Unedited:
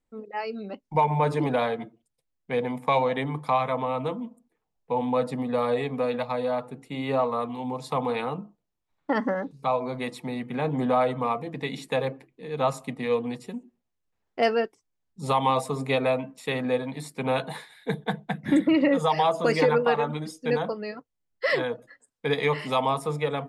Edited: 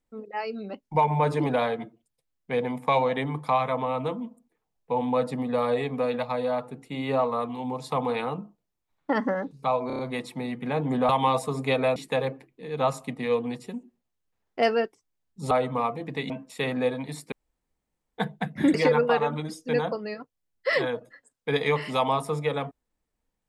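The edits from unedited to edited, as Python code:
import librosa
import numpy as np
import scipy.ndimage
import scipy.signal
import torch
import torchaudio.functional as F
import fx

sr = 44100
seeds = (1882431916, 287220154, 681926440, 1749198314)

y = fx.edit(x, sr, fx.stutter(start_s=9.87, slice_s=0.03, count=5),
    fx.swap(start_s=10.97, length_s=0.79, other_s=15.31, other_length_s=0.87),
    fx.room_tone_fill(start_s=17.2, length_s=0.86),
    fx.cut(start_s=18.62, length_s=0.89), tone=tone)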